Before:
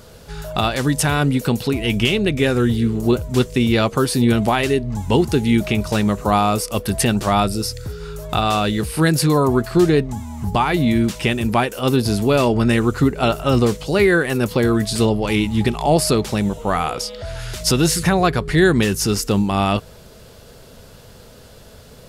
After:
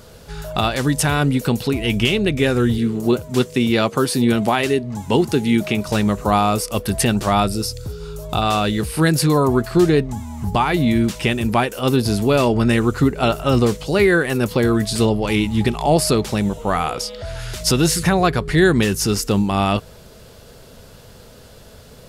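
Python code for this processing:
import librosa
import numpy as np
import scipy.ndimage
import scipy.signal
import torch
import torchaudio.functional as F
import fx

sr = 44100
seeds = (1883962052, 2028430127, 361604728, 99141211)

y = fx.highpass(x, sr, hz=130.0, slope=12, at=(2.78, 5.89))
y = fx.peak_eq(y, sr, hz=1800.0, db=-9.5, octaves=0.72, at=(7.65, 8.42))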